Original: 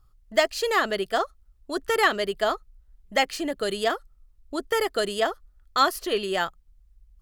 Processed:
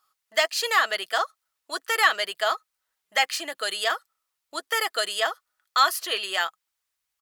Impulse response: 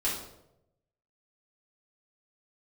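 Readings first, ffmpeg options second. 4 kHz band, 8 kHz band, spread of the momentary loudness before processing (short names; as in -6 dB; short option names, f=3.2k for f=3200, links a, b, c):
+4.0 dB, +4.5 dB, 11 LU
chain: -filter_complex "[0:a]highpass=1k,aecho=1:1:6.2:0.31,asplit=2[a][b];[b]alimiter=limit=-18dB:level=0:latency=1,volume=-2.5dB[c];[a][c]amix=inputs=2:normalize=0"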